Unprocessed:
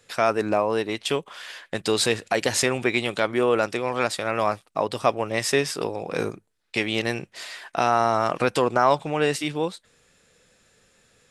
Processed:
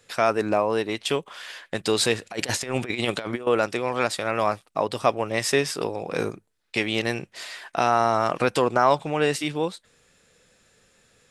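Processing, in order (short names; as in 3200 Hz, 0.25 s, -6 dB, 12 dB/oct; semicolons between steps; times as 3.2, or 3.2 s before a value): 2.3–3.47 negative-ratio compressor -27 dBFS, ratio -0.5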